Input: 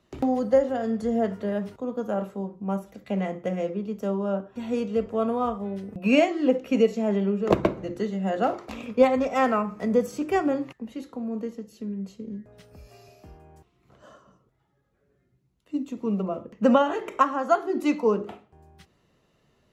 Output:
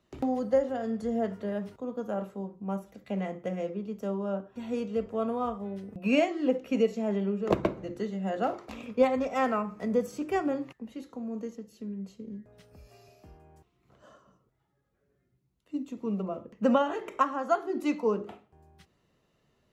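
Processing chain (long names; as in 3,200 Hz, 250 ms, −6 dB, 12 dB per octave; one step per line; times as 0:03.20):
0:11.10–0:11.56: parametric band 6,400 Hz +9.5 dB 0.3 octaves
level −5 dB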